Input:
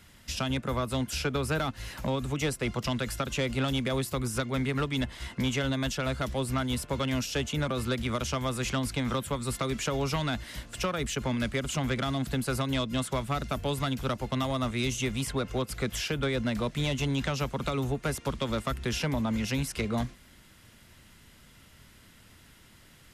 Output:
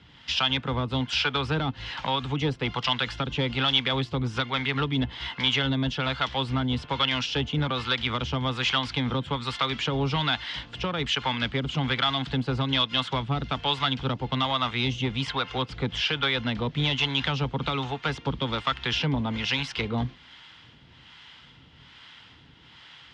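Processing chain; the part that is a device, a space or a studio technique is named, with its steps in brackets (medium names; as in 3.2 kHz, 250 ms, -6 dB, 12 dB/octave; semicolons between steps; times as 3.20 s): guitar amplifier with harmonic tremolo (harmonic tremolo 1.2 Hz, depth 70%, crossover 600 Hz; saturation -22.5 dBFS, distortion -22 dB; cabinet simulation 87–4600 Hz, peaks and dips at 93 Hz -7 dB, 210 Hz -9 dB, 370 Hz -6 dB, 600 Hz -9 dB, 870 Hz +5 dB, 3.2 kHz +8 dB); trim +9 dB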